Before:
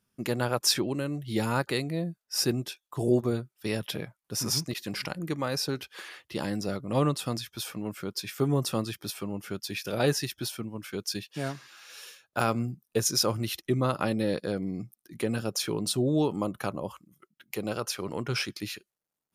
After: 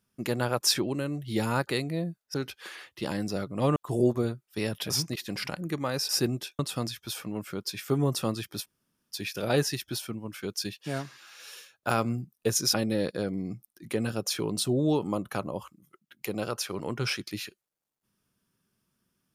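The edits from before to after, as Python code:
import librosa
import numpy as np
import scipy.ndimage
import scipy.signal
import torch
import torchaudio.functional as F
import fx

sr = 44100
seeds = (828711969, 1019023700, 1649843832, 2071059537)

y = fx.edit(x, sr, fx.swap(start_s=2.34, length_s=0.5, other_s=5.67, other_length_s=1.42),
    fx.cut(start_s=3.98, length_s=0.5),
    fx.room_tone_fill(start_s=9.14, length_s=0.48, crossfade_s=0.04),
    fx.cut(start_s=13.24, length_s=0.79), tone=tone)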